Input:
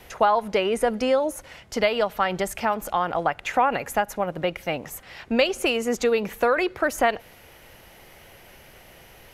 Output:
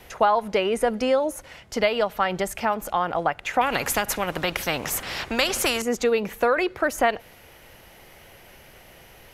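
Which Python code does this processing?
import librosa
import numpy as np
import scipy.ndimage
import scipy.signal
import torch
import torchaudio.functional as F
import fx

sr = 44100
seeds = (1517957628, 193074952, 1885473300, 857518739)

y = fx.spectral_comp(x, sr, ratio=2.0, at=(3.61, 5.82))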